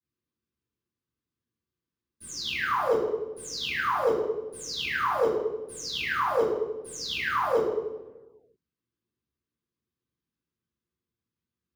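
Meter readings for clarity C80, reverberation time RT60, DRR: 1.5 dB, 1.1 s, −16.0 dB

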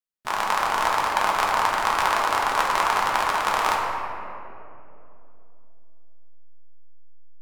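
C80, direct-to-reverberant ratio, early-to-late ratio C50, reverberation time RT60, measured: 2.0 dB, −3.5 dB, 0.5 dB, 2.9 s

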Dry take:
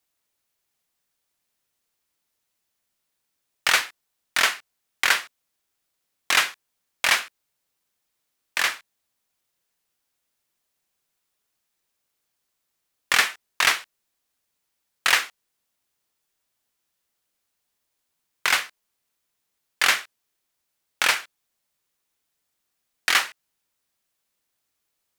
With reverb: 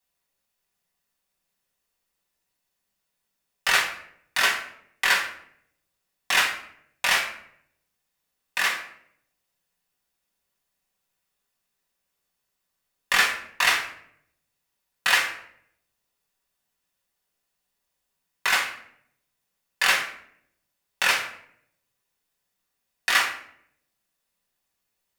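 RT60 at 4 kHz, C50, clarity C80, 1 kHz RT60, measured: 0.45 s, 8.0 dB, 11.5 dB, 0.60 s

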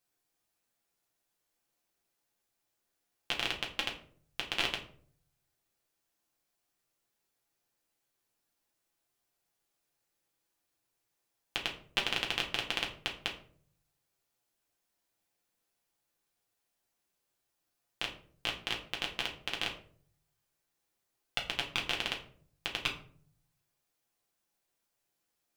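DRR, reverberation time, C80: −1.5 dB, 0.55 s, 14.0 dB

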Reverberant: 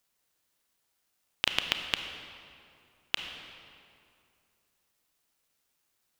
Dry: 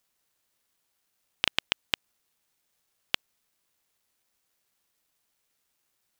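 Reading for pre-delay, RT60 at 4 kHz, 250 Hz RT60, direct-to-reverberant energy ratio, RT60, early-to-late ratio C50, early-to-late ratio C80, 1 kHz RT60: 28 ms, 1.7 s, 2.6 s, 5.5 dB, 2.4 s, 6.5 dB, 7.0 dB, 2.4 s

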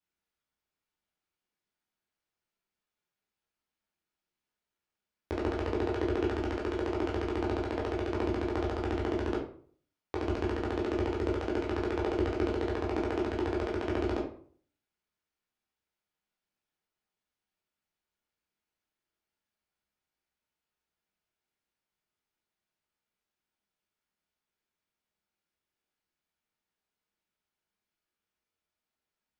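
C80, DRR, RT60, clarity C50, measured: 10.5 dB, −4.0 dB, 0.50 s, 6.5 dB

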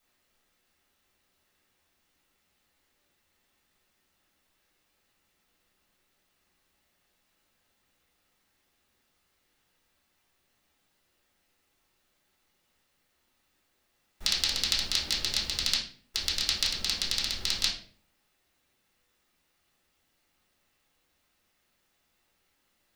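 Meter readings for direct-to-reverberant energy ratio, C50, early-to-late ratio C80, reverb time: −6.5 dB, 6.5 dB, 11.0 dB, 0.50 s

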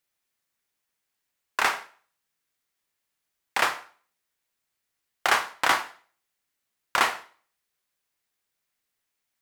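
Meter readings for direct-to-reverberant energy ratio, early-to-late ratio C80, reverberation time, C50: 10.0 dB, 19.0 dB, 0.45 s, 15.0 dB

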